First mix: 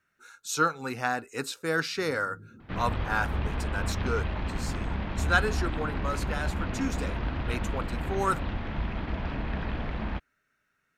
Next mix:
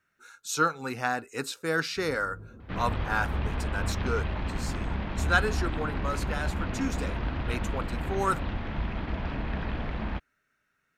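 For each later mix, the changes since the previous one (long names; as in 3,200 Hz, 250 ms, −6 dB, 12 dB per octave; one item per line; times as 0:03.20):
first sound: remove flat-topped band-pass 200 Hz, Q 0.81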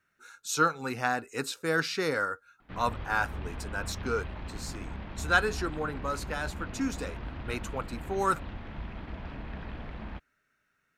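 first sound: muted
second sound −8.0 dB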